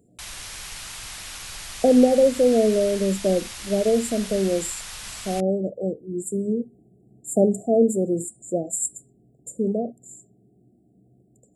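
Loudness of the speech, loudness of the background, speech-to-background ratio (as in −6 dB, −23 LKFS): −22.5 LKFS, −34.5 LKFS, 12.0 dB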